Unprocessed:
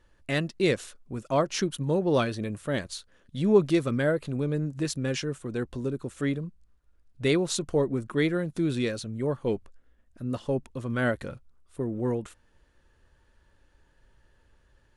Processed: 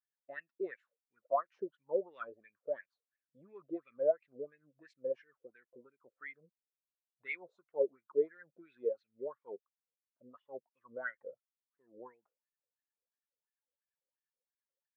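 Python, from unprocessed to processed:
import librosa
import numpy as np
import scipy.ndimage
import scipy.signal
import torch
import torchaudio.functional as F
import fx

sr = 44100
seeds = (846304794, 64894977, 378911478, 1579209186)

y = fx.wah_lfo(x, sr, hz=2.9, low_hz=470.0, high_hz=2300.0, q=6.0)
y = fx.spectral_expand(y, sr, expansion=1.5)
y = y * 10.0 ** (3.5 / 20.0)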